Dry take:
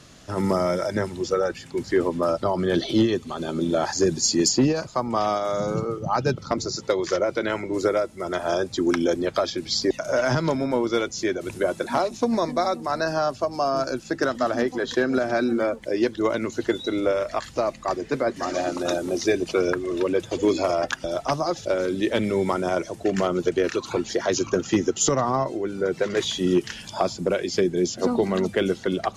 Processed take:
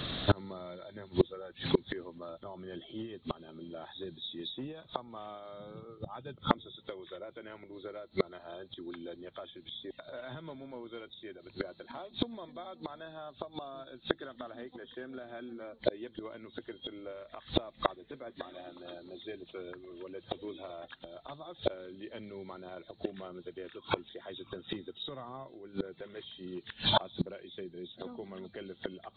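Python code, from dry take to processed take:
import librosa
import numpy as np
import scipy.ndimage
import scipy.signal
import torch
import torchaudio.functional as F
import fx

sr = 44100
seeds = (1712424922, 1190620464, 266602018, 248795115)

y = fx.freq_compress(x, sr, knee_hz=3100.0, ratio=4.0)
y = fx.gate_flip(y, sr, shuts_db=-22.0, range_db=-32)
y = y * 10.0 ** (10.0 / 20.0)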